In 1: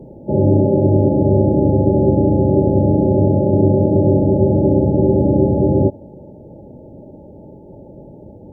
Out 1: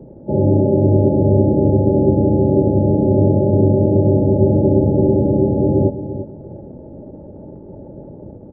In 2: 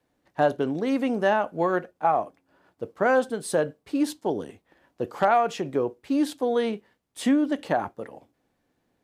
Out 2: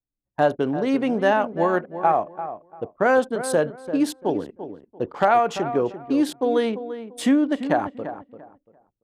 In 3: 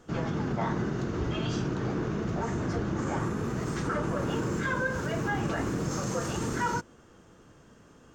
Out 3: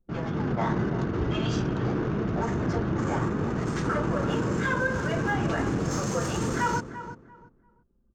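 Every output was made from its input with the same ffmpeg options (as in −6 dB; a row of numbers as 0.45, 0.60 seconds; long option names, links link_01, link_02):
-filter_complex "[0:a]anlmdn=0.398,dynaudnorm=framelen=220:gausssize=3:maxgain=4dB,asplit=2[link_01][link_02];[link_02]adelay=342,lowpass=frequency=1700:poles=1,volume=-11dB,asplit=2[link_03][link_04];[link_04]adelay=342,lowpass=frequency=1700:poles=1,volume=0.24,asplit=2[link_05][link_06];[link_06]adelay=342,lowpass=frequency=1700:poles=1,volume=0.24[link_07];[link_03][link_05][link_07]amix=inputs=3:normalize=0[link_08];[link_01][link_08]amix=inputs=2:normalize=0,volume=-1dB"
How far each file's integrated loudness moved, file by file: 0.0, +3.0, +3.0 LU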